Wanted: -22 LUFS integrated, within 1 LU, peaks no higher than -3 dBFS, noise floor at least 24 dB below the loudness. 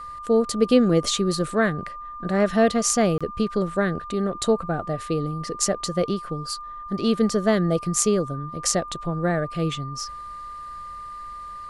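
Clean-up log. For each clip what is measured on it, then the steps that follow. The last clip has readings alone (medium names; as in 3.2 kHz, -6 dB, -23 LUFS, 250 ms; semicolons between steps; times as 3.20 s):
dropouts 1; longest dropout 26 ms; steady tone 1.2 kHz; tone level -34 dBFS; loudness -23.5 LUFS; peak level -3.5 dBFS; loudness target -22.0 LUFS
-> interpolate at 3.18 s, 26 ms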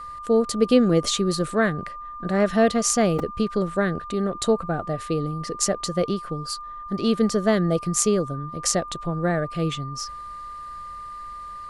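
dropouts 0; steady tone 1.2 kHz; tone level -34 dBFS
-> band-stop 1.2 kHz, Q 30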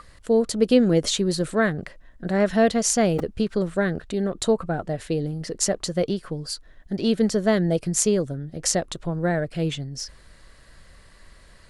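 steady tone not found; loudness -23.5 LUFS; peak level -3.0 dBFS; loudness target -22.0 LUFS
-> trim +1.5 dB; peak limiter -3 dBFS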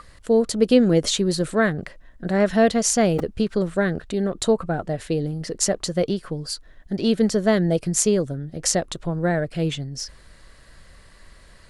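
loudness -22.0 LUFS; peak level -3.0 dBFS; noise floor -49 dBFS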